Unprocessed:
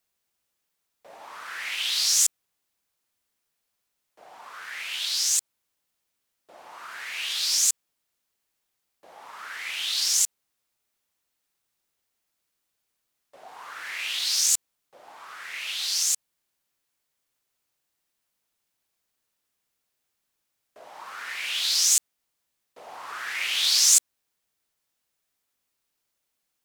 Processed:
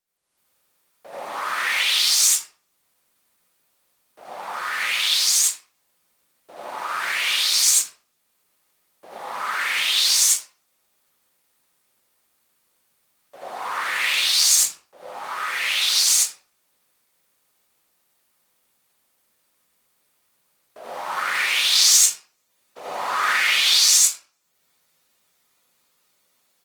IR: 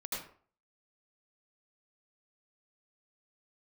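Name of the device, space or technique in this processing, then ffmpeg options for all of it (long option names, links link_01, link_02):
far-field microphone of a smart speaker: -filter_complex "[1:a]atrim=start_sample=2205[link_01];[0:a][link_01]afir=irnorm=-1:irlink=0,highpass=frequency=82:poles=1,dynaudnorm=framelen=220:gausssize=3:maxgain=14dB,volume=-1dB" -ar 48000 -c:a libopus -b:a 24k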